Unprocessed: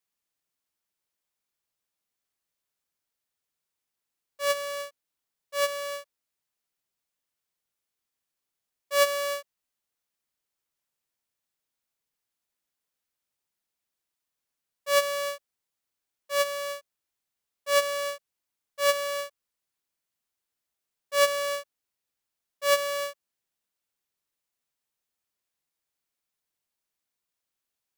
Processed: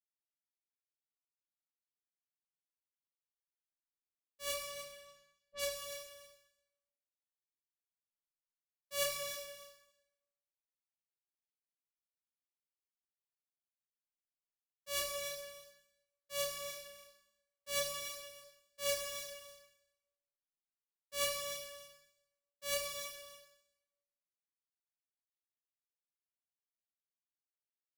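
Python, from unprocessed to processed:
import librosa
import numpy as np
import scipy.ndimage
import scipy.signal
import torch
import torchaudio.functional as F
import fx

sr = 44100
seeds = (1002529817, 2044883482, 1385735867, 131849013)

p1 = fx.law_mismatch(x, sr, coded='A')
p2 = fx.chorus_voices(p1, sr, voices=2, hz=0.6, base_ms=29, depth_ms=3.1, mix_pct=40)
p3 = fx.env_lowpass(p2, sr, base_hz=440.0, full_db=-31.0, at=(4.53, 5.75), fade=0.02)
p4 = fx.rider(p3, sr, range_db=10, speed_s=0.5)
p5 = p3 + (p4 * librosa.db_to_amplitude(-3.0))
p6 = fx.tone_stack(p5, sr, knobs='10-0-1')
p7 = p6 + 10.0 ** (-12.0 / 20.0) * np.pad(p6, (int(290 * sr / 1000.0), 0))[:len(p6)]
p8 = fx.rev_plate(p7, sr, seeds[0], rt60_s=0.91, hf_ratio=0.9, predelay_ms=0, drr_db=2.5)
y = p8 * librosa.db_to_amplitude(12.0)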